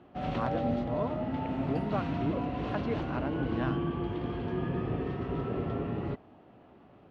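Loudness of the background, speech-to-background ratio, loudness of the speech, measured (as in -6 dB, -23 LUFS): -33.5 LUFS, -4.0 dB, -37.5 LUFS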